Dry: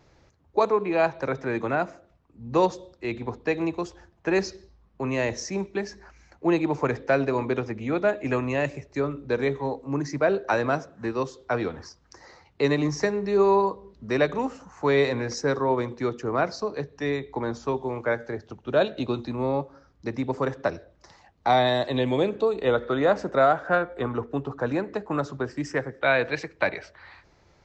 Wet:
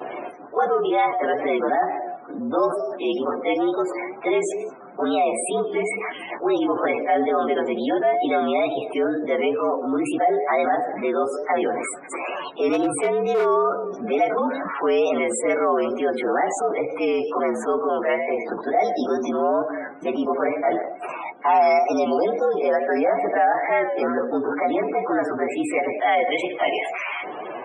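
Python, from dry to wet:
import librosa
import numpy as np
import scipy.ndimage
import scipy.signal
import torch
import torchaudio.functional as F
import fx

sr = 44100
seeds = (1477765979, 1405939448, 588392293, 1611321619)

y = fx.partial_stretch(x, sr, pct=114)
y = fx.high_shelf(y, sr, hz=3000.0, db=-9.0)
y = fx.vibrato(y, sr, rate_hz=2.2, depth_cents=80.0)
y = fx.leveller(y, sr, passes=2, at=(20.67, 21.79))
y = fx.spec_topn(y, sr, count=64)
y = fx.clip_hard(y, sr, threshold_db=-20.5, at=(12.72, 13.44), fade=0.02)
y = scipy.signal.sosfilt(scipy.signal.butter(4, 280.0, 'highpass', fs=sr, output='sos'), y)
y = fx.small_body(y, sr, hz=(720.0, 2200.0, 3800.0), ring_ms=65, db=12)
y = fx.env_flatten(y, sr, amount_pct=70)
y = F.gain(torch.from_numpy(y), -6.0).numpy()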